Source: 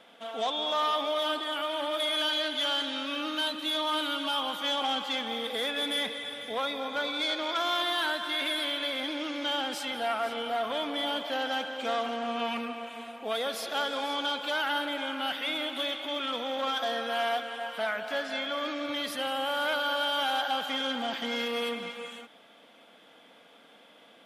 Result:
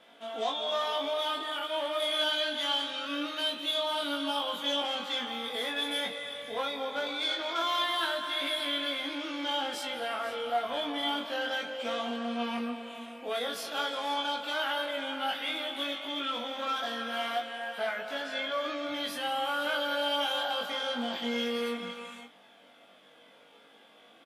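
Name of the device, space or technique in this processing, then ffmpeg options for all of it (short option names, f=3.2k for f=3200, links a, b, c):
double-tracked vocal: -filter_complex "[0:a]asplit=2[a][b];[b]adelay=21,volume=-4dB[c];[a][c]amix=inputs=2:normalize=0,flanger=delay=18:depth=2.8:speed=0.12"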